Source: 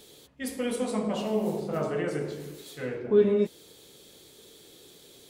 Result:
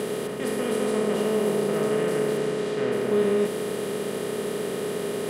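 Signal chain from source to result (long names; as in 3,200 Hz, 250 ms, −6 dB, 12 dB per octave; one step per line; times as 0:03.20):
compressor on every frequency bin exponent 0.2
0:02.37–0:02.91: low-pass filter 9,400 Hz → 5,400 Hz 12 dB per octave
level −4.5 dB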